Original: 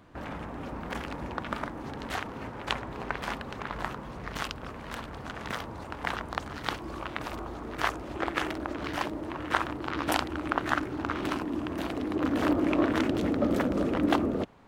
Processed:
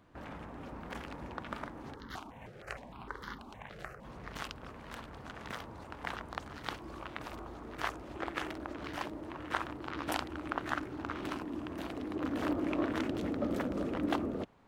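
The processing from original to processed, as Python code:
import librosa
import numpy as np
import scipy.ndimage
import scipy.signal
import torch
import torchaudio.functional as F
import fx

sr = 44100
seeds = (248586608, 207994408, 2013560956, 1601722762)

y = fx.phaser_held(x, sr, hz=6.5, low_hz=260.0, high_hz=2500.0, at=(1.94, 4.03), fade=0.02)
y = F.gain(torch.from_numpy(y), -7.5).numpy()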